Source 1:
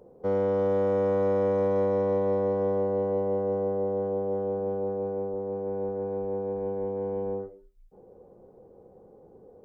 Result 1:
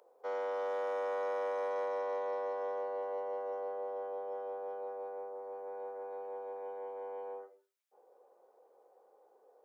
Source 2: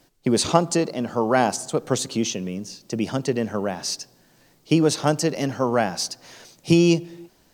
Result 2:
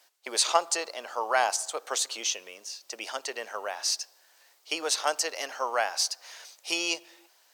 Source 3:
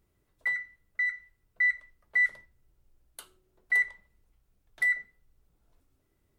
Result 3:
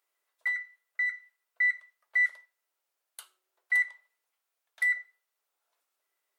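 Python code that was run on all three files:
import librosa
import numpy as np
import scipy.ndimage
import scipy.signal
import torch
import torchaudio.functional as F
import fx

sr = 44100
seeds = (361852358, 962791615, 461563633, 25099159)

y = scipy.signal.sosfilt(scipy.signal.bessel(4, 910.0, 'highpass', norm='mag', fs=sr, output='sos'), x)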